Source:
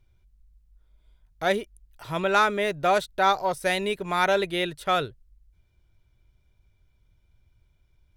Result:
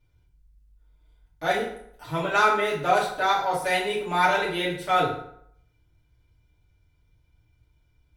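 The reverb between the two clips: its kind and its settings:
feedback delay network reverb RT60 0.68 s, low-frequency decay 0.95×, high-frequency decay 0.7×, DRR −7.5 dB
level −7 dB

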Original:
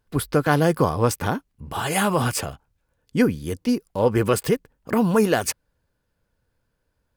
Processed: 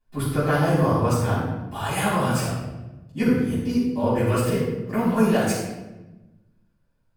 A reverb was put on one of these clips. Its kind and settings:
rectangular room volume 530 cubic metres, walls mixed, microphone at 8.8 metres
level −18 dB

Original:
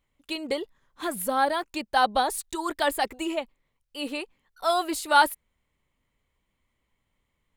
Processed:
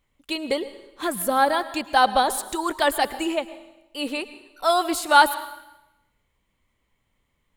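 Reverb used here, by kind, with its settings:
dense smooth reverb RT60 0.93 s, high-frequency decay 0.95×, pre-delay 95 ms, DRR 14 dB
level +4 dB

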